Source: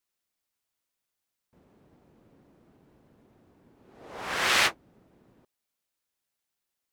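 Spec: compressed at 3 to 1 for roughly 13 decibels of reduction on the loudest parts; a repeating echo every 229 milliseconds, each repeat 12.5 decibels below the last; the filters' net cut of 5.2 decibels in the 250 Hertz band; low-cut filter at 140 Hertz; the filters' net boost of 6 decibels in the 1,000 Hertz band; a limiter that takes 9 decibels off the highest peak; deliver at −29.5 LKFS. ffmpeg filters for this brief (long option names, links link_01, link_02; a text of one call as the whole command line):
ffmpeg -i in.wav -af "highpass=140,equalizer=frequency=250:width_type=o:gain=-8,equalizer=frequency=1000:width_type=o:gain=8,acompressor=threshold=-35dB:ratio=3,alimiter=level_in=6dB:limit=-24dB:level=0:latency=1,volume=-6dB,aecho=1:1:229|458|687:0.237|0.0569|0.0137,volume=11dB" out.wav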